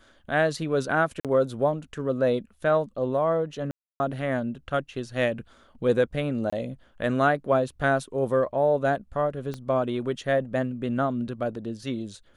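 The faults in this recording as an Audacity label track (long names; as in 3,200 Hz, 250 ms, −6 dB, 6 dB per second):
1.200000	1.250000	drop-out 47 ms
3.710000	4.000000	drop-out 290 ms
6.500000	6.530000	drop-out 25 ms
9.540000	9.540000	click −21 dBFS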